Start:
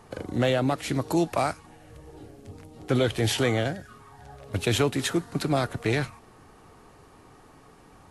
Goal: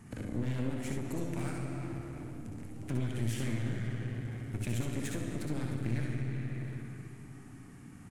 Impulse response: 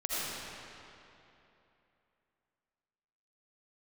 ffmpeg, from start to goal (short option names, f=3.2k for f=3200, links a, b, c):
-filter_complex "[0:a]equalizer=f=125:t=o:w=1:g=8,equalizer=f=250:t=o:w=1:g=10,equalizer=f=500:t=o:w=1:g=-12,equalizer=f=1k:t=o:w=1:g=-8,equalizer=f=2k:t=o:w=1:g=5,equalizer=f=4k:t=o:w=1:g=-9,equalizer=f=8k:t=o:w=1:g=5,asplit=2[a][b];[1:a]atrim=start_sample=2205,asetrate=48510,aresample=44100[c];[b][c]afir=irnorm=-1:irlink=0,volume=-8.5dB[d];[a][d]amix=inputs=2:normalize=0,acompressor=threshold=-29dB:ratio=2.5,aeval=exprs='clip(val(0),-1,0.0158)':c=same,aecho=1:1:61|71:0.473|0.422,volume=-6dB"